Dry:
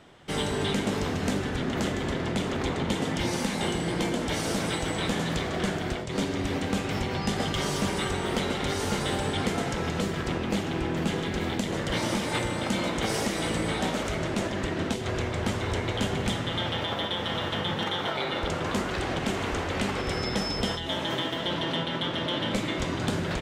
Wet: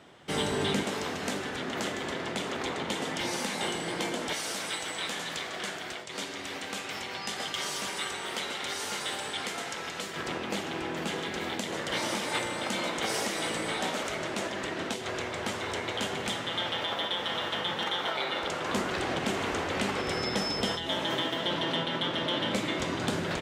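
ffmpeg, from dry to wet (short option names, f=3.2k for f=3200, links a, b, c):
-af "asetnsamples=n=441:p=0,asendcmd='0.83 highpass f 550;4.33 highpass f 1400;10.15 highpass f 540;18.69 highpass f 210',highpass=f=150:p=1"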